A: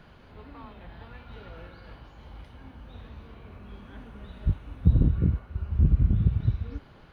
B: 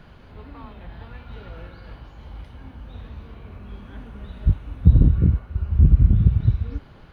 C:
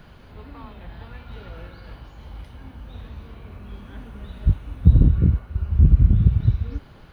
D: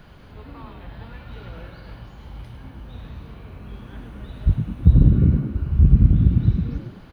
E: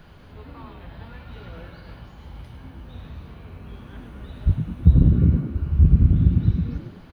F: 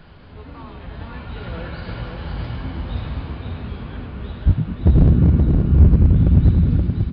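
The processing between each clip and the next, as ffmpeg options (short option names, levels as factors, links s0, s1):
-af "lowshelf=f=150:g=5,volume=1.41"
-af "crystalizer=i=1:c=0"
-filter_complex "[0:a]asplit=5[s0][s1][s2][s3][s4];[s1]adelay=103,afreqshift=66,volume=0.398[s5];[s2]adelay=206,afreqshift=132,volume=0.14[s6];[s3]adelay=309,afreqshift=198,volume=0.049[s7];[s4]adelay=412,afreqshift=264,volume=0.017[s8];[s0][s5][s6][s7][s8]amix=inputs=5:normalize=0"
-filter_complex "[0:a]asplit=2[s0][s1];[s1]adelay=12,volume=0.282[s2];[s0][s2]amix=inputs=2:normalize=0,volume=0.841"
-af "dynaudnorm=f=640:g=5:m=3.16,aresample=11025,asoftclip=type=hard:threshold=0.299,aresample=44100,aecho=1:1:525:0.631,volume=1.41"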